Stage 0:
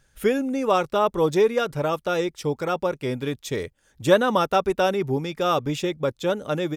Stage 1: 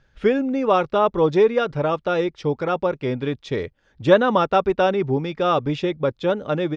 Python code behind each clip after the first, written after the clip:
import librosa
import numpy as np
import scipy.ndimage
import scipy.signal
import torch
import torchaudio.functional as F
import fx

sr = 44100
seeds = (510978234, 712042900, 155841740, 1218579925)

y = scipy.signal.sosfilt(scipy.signal.butter(4, 5100.0, 'lowpass', fs=sr, output='sos'), x)
y = fx.high_shelf(y, sr, hz=3500.0, db=-7.0)
y = y * 10.0 ** (3.0 / 20.0)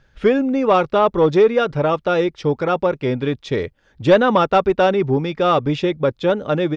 y = 10.0 ** (-7.5 / 20.0) * np.tanh(x / 10.0 ** (-7.5 / 20.0))
y = y * 10.0 ** (4.0 / 20.0)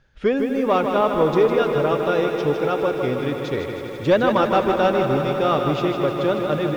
y = fx.echo_swell(x, sr, ms=82, loudest=5, wet_db=-15)
y = fx.echo_crushed(y, sr, ms=155, feedback_pct=55, bits=7, wet_db=-6.5)
y = y * 10.0 ** (-4.5 / 20.0)